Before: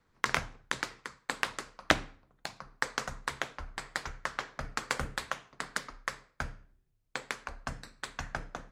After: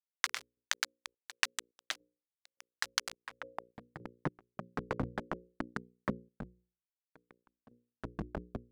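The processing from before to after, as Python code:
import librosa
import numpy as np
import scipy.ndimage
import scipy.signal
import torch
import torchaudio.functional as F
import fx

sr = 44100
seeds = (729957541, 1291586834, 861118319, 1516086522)

y = fx.delta_hold(x, sr, step_db=-27.0)
y = fx.hum_notches(y, sr, base_hz=60, count=9)
y = fx.filter_sweep_bandpass(y, sr, from_hz=5300.0, to_hz=230.0, start_s=3.08, end_s=3.8, q=0.84)
y = fx.tremolo_random(y, sr, seeds[0], hz=3.5, depth_pct=95)
y = y * librosa.db_to_amplitude(9.5)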